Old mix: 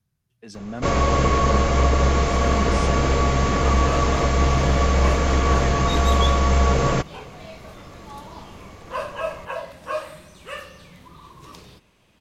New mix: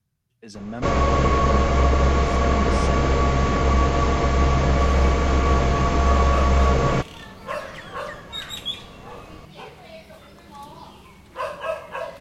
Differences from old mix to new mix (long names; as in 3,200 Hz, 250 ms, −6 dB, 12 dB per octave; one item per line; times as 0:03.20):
first sound: add high-shelf EQ 6,400 Hz −10 dB
second sound: entry +2.45 s